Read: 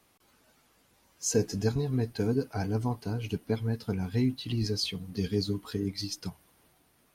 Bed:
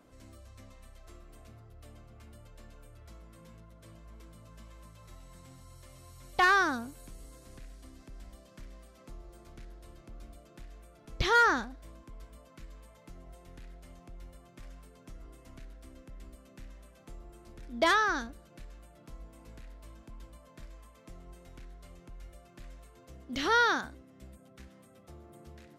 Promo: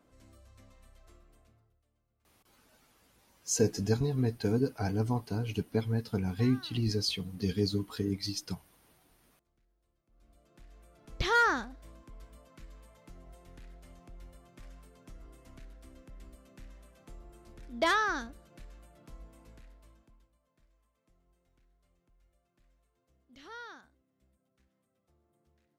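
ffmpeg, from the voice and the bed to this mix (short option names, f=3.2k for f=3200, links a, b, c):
-filter_complex "[0:a]adelay=2250,volume=-0.5dB[a];[1:a]volume=19dB,afade=t=out:st=1.01:d=0.82:silence=0.0891251,afade=t=in:st=10.07:d=1.05:silence=0.0595662,afade=t=out:st=19.22:d=1.07:silence=0.112202[b];[a][b]amix=inputs=2:normalize=0"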